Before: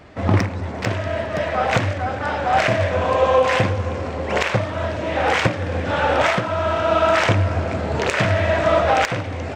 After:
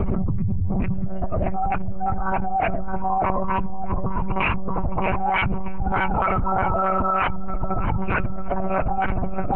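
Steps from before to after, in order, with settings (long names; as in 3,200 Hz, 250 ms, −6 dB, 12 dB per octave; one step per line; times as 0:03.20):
expanding power law on the bin magnitudes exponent 2.8
dynamic equaliser 440 Hz, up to −4 dB, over −30 dBFS, Q 1.1
phaser with its sweep stopped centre 2,700 Hz, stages 8
on a send: feedback echo with a low-pass in the loop 623 ms, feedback 71%, low-pass 1,800 Hz, level −6 dB
on the sum: one-pitch LPC vocoder at 8 kHz 190 Hz
envelope flattener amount 100%
level −6.5 dB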